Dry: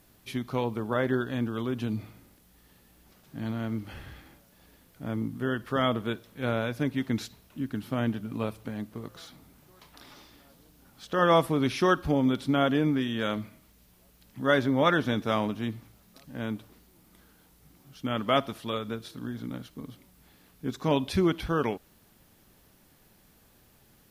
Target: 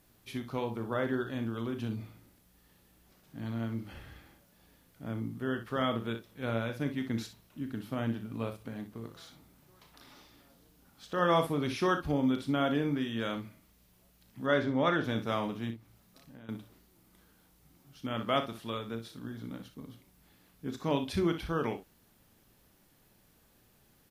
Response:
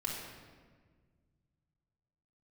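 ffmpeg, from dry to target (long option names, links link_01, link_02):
-filter_complex "[0:a]asettb=1/sr,asplit=3[link_01][link_02][link_03];[link_01]atrim=end=14.464[link_04];[link_02]atrim=start=14.46:end=15.04,asetpts=PTS-STARTPTS,afade=type=in:duration=0.004:curve=qsin,afade=type=out:start_time=0.576:duration=0.004:curve=qsin,equalizer=frequency=13000:width=0.61:gain=-12[link_05];[link_03]atrim=start=15.036[link_06];[link_04][link_05]acrossfade=duration=0.004:curve1=hsin:curve2=qsin[link_07];[link_07][link_06]acrossfade=duration=0.004:curve1=qsin:curve2=hsin,asettb=1/sr,asplit=3[link_08][link_09][link_10];[link_08]atrim=end=15.704[link_11];[link_09]atrim=start=15.7:end=16.49,asetpts=PTS-STARTPTS,afade=type=in:duration=0.004:curve=qsin,afade=type=out:start_time=0.786:duration=0.004:curve=qsin,acompressor=threshold=-45dB:ratio=8[link_12];[link_10]atrim=start=16.486[link_13];[link_11][link_12]acrossfade=duration=0.004:curve1=hsin:curve2=qsin[link_14];[link_14][link_13]acrossfade=duration=0.004:curve1=qsin:curve2=hsin,aecho=1:1:35|61:0.316|0.299,volume=-5.5dB"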